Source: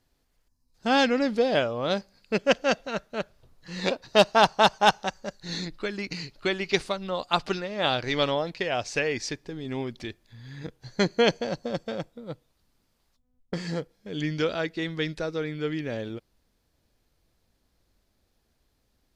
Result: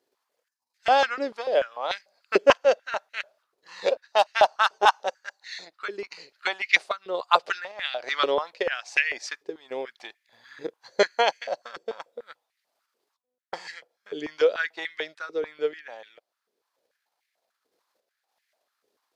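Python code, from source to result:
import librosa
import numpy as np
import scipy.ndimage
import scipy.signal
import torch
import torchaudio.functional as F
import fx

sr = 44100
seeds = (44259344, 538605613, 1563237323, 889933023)

y = fx.transient(x, sr, attack_db=5, sustain_db=-3)
y = fx.tremolo_random(y, sr, seeds[0], hz=3.5, depth_pct=55)
y = fx.filter_held_highpass(y, sr, hz=6.8, low_hz=410.0, high_hz=2000.0)
y = F.gain(torch.from_numpy(y), -2.5).numpy()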